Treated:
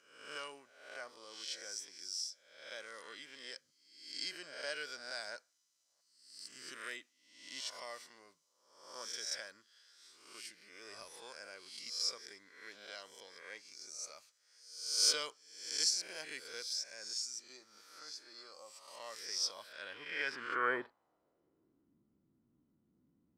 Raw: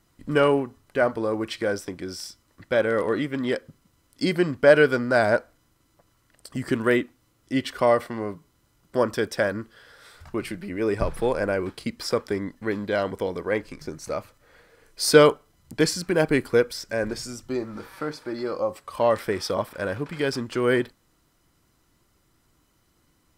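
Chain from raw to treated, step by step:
peak hold with a rise ahead of every peak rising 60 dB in 0.76 s
band-pass filter sweep 5,900 Hz → 220 Hz, 0:19.43–0:22.00
level −3.5 dB

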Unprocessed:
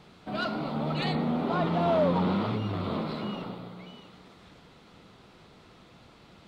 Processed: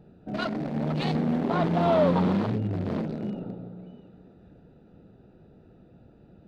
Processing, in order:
adaptive Wiener filter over 41 samples
level +3.5 dB

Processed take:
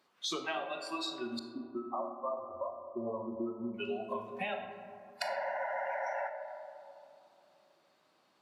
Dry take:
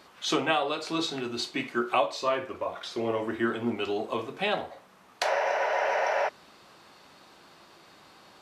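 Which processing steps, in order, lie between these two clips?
high-pass filter 140 Hz 12 dB per octave
noise reduction from a noise print of the clip's start 20 dB
downward compressor, threshold −37 dBFS, peak gain reduction 16.5 dB
0:01.39–0:03.74: linear-phase brick-wall low-pass 1,300 Hz
convolution reverb RT60 2.8 s, pre-delay 4 ms, DRR 6 dB
level +2 dB

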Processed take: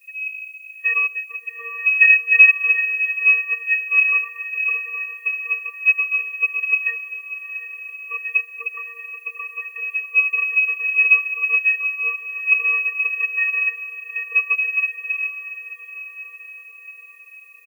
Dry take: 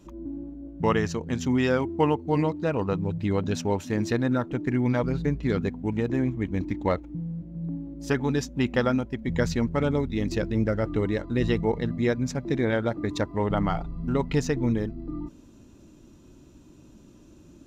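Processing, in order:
comb filter 6.6 ms, depth 82%
channel vocoder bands 16, square 348 Hz
voice inversion scrambler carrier 2,900 Hz
on a send: feedback delay with all-pass diffusion 751 ms, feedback 66%, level −9.5 dB
on the sum: background noise violet −60 dBFS
echo ahead of the sound 37 ms −23.5 dB
expander for the loud parts 1.5 to 1, over −29 dBFS
level +7 dB

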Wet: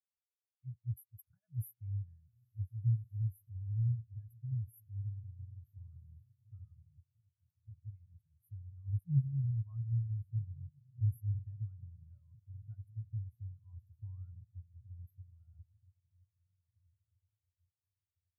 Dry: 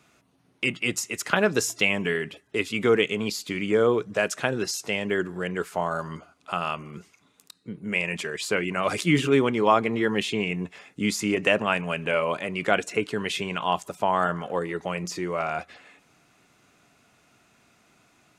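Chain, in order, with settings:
inverse Chebyshev band-stop filter 190–7,400 Hz, stop band 40 dB
feedback delay with all-pass diffusion 1,528 ms, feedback 53%, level −10 dB
every bin expanded away from the loudest bin 2.5 to 1
level +10 dB

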